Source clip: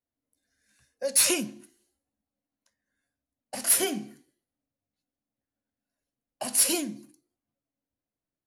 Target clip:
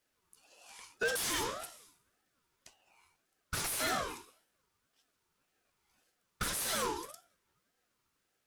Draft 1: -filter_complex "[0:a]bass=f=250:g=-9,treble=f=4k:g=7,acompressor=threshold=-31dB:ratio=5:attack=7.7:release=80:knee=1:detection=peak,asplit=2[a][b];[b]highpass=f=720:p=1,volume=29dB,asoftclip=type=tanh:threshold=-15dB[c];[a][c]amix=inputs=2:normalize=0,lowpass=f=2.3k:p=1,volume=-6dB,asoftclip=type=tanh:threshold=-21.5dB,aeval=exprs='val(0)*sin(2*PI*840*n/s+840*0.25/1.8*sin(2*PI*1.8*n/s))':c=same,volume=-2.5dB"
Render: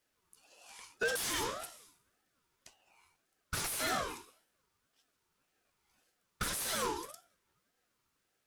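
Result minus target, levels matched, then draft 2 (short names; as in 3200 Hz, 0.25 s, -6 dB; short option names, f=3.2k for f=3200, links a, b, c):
compressor: peak gain reduction +7 dB
-filter_complex "[0:a]bass=f=250:g=-9,treble=f=4k:g=7,acompressor=threshold=-22dB:ratio=5:attack=7.7:release=80:knee=1:detection=peak,asplit=2[a][b];[b]highpass=f=720:p=1,volume=29dB,asoftclip=type=tanh:threshold=-15dB[c];[a][c]amix=inputs=2:normalize=0,lowpass=f=2.3k:p=1,volume=-6dB,asoftclip=type=tanh:threshold=-21.5dB,aeval=exprs='val(0)*sin(2*PI*840*n/s+840*0.25/1.8*sin(2*PI*1.8*n/s))':c=same,volume=-2.5dB"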